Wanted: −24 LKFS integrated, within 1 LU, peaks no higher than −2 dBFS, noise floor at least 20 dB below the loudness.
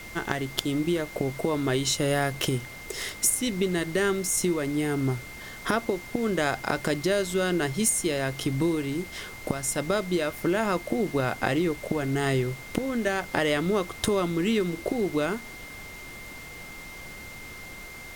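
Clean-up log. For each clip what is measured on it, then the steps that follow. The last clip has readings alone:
interfering tone 2,100 Hz; level of the tone −42 dBFS; background noise floor −42 dBFS; target noise floor −47 dBFS; integrated loudness −27.0 LKFS; sample peak −9.0 dBFS; target loudness −24.0 LKFS
→ notch filter 2,100 Hz, Q 30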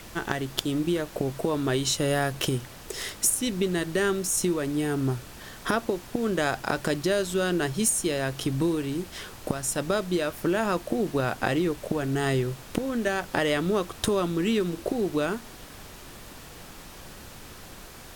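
interfering tone none found; background noise floor −45 dBFS; target noise floor −47 dBFS
→ noise reduction from a noise print 6 dB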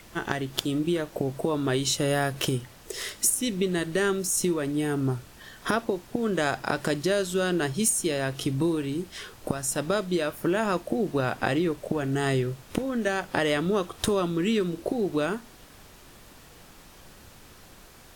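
background noise floor −51 dBFS; integrated loudness −27.0 LKFS; sample peak −9.0 dBFS; target loudness −24.0 LKFS
→ level +3 dB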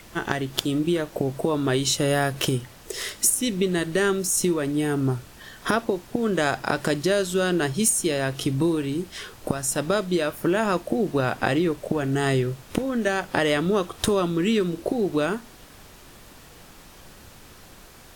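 integrated loudness −24.0 LKFS; sample peak −6.0 dBFS; background noise floor −48 dBFS

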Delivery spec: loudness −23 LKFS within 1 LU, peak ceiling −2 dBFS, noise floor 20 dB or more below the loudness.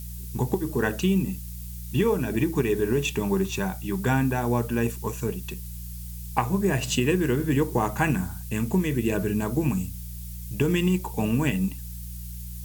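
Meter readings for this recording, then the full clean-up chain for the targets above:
mains hum 60 Hz; hum harmonics up to 180 Hz; level of the hum −34 dBFS; background noise floor −37 dBFS; target noise floor −46 dBFS; integrated loudness −26.0 LKFS; sample peak −7.0 dBFS; target loudness −23.0 LKFS
→ hum removal 60 Hz, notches 3
broadband denoise 9 dB, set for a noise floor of −37 dBFS
level +3 dB

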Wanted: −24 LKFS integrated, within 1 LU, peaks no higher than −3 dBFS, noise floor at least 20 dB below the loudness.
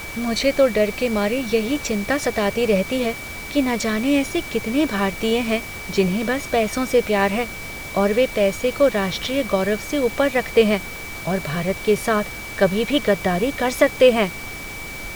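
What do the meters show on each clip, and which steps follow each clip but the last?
interfering tone 2,300 Hz; level of the tone −33 dBFS; background noise floor −33 dBFS; target noise floor −41 dBFS; integrated loudness −20.5 LKFS; sample peak −3.0 dBFS; target loudness −24.0 LKFS
→ notch filter 2,300 Hz, Q 30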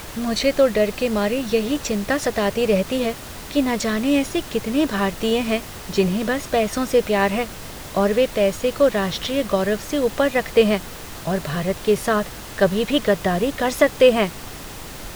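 interfering tone none found; background noise floor −36 dBFS; target noise floor −41 dBFS
→ noise reduction from a noise print 6 dB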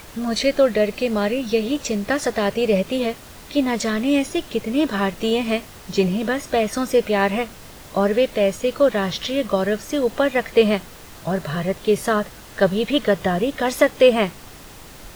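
background noise floor −41 dBFS; integrated loudness −21.0 LKFS; sample peak −2.5 dBFS; target loudness −24.0 LKFS
→ level −3 dB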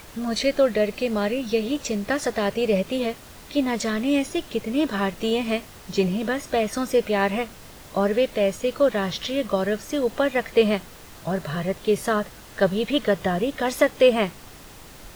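integrated loudness −24.0 LKFS; sample peak −5.5 dBFS; background noise floor −44 dBFS

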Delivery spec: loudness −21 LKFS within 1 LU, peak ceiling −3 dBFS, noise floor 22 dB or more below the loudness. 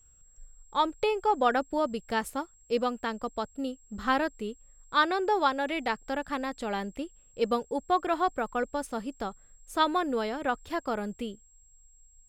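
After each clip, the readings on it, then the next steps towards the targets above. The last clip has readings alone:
interfering tone 7,600 Hz; level of the tone −59 dBFS; integrated loudness −30.0 LKFS; sample peak −11.0 dBFS; target loudness −21.0 LKFS
→ notch filter 7,600 Hz, Q 30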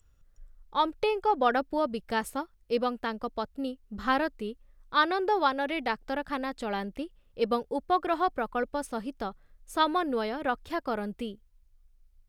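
interfering tone none found; integrated loudness −30.0 LKFS; sample peak −11.0 dBFS; target loudness −21.0 LKFS
→ level +9 dB
brickwall limiter −3 dBFS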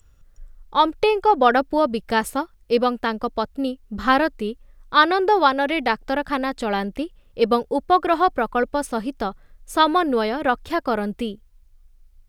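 integrated loudness −21.0 LKFS; sample peak −3.0 dBFS; background noise floor −54 dBFS

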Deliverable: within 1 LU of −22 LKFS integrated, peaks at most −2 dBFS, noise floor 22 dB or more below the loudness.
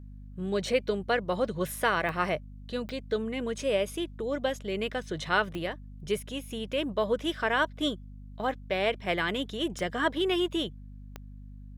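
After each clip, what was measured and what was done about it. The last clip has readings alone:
number of clicks 5; mains hum 50 Hz; hum harmonics up to 250 Hz; level of the hum −42 dBFS; integrated loudness −30.5 LKFS; sample peak −11.5 dBFS; target loudness −22.0 LKFS
→ click removal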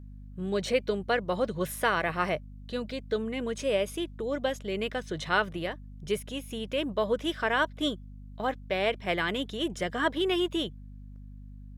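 number of clicks 0; mains hum 50 Hz; hum harmonics up to 250 Hz; level of the hum −42 dBFS
→ mains-hum notches 50/100/150/200/250 Hz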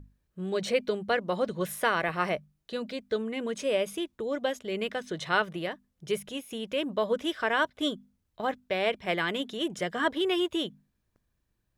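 mains hum none found; integrated loudness −30.5 LKFS; sample peak −11.5 dBFS; target loudness −22.0 LKFS
→ level +8.5 dB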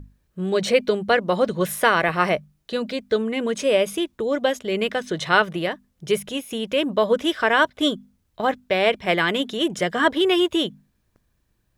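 integrated loudness −22.0 LKFS; sample peak −3.0 dBFS; background noise floor −69 dBFS

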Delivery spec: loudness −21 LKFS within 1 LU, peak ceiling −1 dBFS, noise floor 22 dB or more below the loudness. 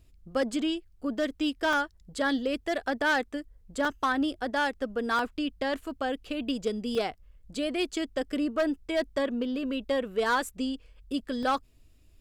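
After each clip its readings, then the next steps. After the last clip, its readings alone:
share of clipped samples 0.8%; peaks flattened at −20.0 dBFS; number of dropouts 7; longest dropout 1.8 ms; integrated loudness −30.0 LKFS; sample peak −20.0 dBFS; target loudness −21.0 LKFS
→ clipped peaks rebuilt −20 dBFS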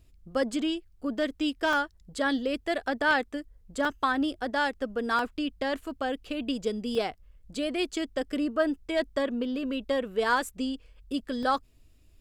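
share of clipped samples 0.0%; number of dropouts 7; longest dropout 1.8 ms
→ repair the gap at 0:00.53/0:01.73/0:03.85/0:05.19/0:06.95/0:07.93/0:11.43, 1.8 ms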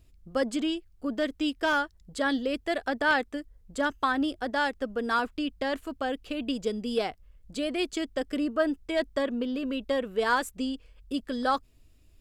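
number of dropouts 0; integrated loudness −29.5 LKFS; sample peak −12.5 dBFS; target loudness −21.0 LKFS
→ level +8.5 dB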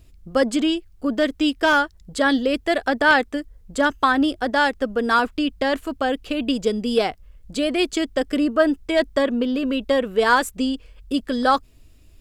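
integrated loudness −21.0 LKFS; sample peak −4.0 dBFS; background noise floor −51 dBFS

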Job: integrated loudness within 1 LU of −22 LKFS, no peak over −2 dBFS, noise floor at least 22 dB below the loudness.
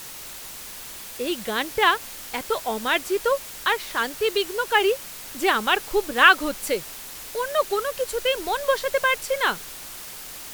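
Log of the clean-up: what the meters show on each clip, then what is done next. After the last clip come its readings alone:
background noise floor −38 dBFS; target noise floor −45 dBFS; integrated loudness −23.0 LKFS; sample peak −1.5 dBFS; target loudness −22.0 LKFS
→ noise reduction from a noise print 7 dB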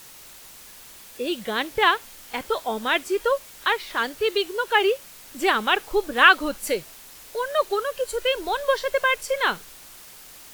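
background noise floor −45 dBFS; integrated loudness −23.0 LKFS; sample peak −1.5 dBFS; target loudness −22.0 LKFS
→ level +1 dB
brickwall limiter −2 dBFS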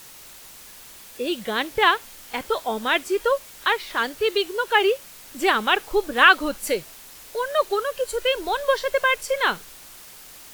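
integrated loudness −22.0 LKFS; sample peak −2.0 dBFS; background noise floor −44 dBFS

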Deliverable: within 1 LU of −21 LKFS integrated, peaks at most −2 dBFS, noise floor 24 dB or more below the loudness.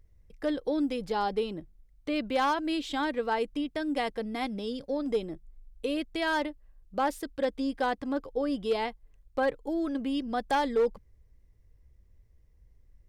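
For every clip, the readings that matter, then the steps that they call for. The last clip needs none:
share of clipped samples 0.4%; peaks flattened at −20.0 dBFS; integrated loudness −31.0 LKFS; sample peak −20.0 dBFS; target loudness −21.0 LKFS
→ clipped peaks rebuilt −20 dBFS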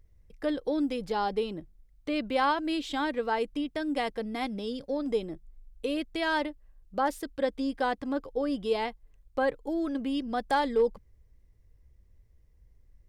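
share of clipped samples 0.0%; integrated loudness −31.0 LKFS; sample peak −14.5 dBFS; target loudness −21.0 LKFS
→ level +10 dB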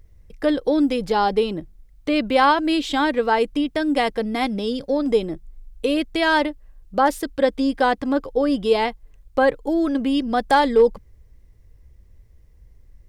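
integrated loudness −21.0 LKFS; sample peak −4.5 dBFS; background noise floor −52 dBFS

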